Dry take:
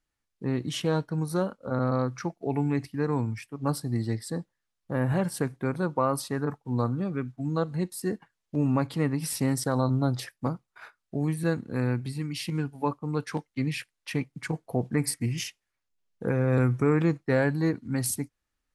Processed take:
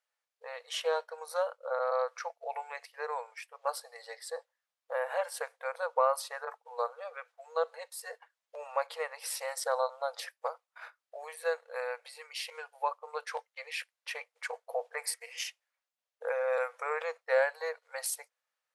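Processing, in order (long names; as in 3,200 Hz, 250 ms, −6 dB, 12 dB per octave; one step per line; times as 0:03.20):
linear-phase brick-wall high-pass 460 Hz
high-shelf EQ 4,600 Hz −5.5 dB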